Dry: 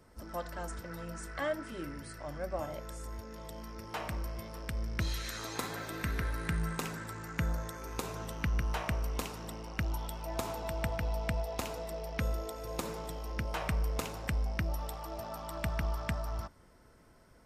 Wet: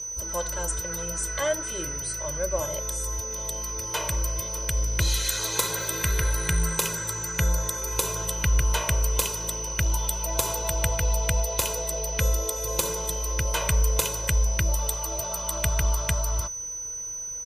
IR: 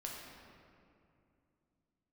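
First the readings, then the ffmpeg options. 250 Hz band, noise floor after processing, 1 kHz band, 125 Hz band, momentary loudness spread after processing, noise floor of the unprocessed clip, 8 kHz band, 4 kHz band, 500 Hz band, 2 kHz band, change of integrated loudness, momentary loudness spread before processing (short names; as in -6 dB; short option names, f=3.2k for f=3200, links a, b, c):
+2.0 dB, -35 dBFS, +7.0 dB, +8.5 dB, 5 LU, -60 dBFS, +23.5 dB, +13.5 dB, +8.0 dB, +8.5 dB, +11.5 dB, 8 LU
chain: -af "aexciter=amount=2.4:drive=4.3:freq=2.8k,aeval=exprs='val(0)+0.00794*sin(2*PI*6000*n/s)':c=same,aecho=1:1:2:0.84,volume=5dB"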